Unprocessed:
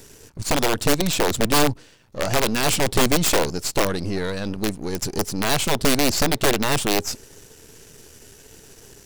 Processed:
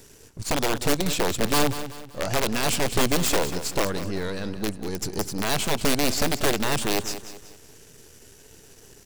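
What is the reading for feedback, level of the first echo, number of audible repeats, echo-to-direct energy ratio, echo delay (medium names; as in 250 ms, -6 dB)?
39%, -12.0 dB, 3, -11.5 dB, 190 ms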